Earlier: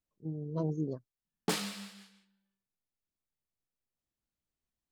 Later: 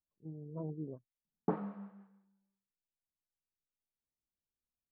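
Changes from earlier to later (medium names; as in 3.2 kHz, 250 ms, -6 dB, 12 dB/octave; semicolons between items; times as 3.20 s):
speech -8.0 dB; master: add low-pass 1.1 kHz 24 dB/octave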